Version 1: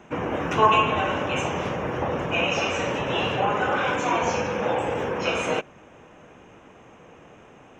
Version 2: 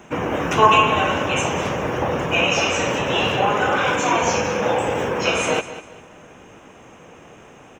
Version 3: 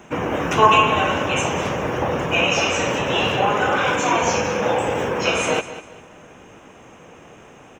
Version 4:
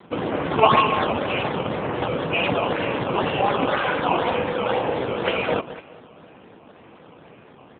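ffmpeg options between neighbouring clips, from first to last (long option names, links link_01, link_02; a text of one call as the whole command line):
ffmpeg -i in.wav -af "highshelf=frequency=5700:gain=11,aecho=1:1:198|396|594:0.2|0.0599|0.018,volume=4dB" out.wav
ffmpeg -i in.wav -af anull out.wav
ffmpeg -i in.wav -af "acrusher=samples=14:mix=1:aa=0.000001:lfo=1:lforange=22.4:lforate=2,volume=-1dB" -ar 8000 -c:a libopencore_amrnb -b:a 7950 out.amr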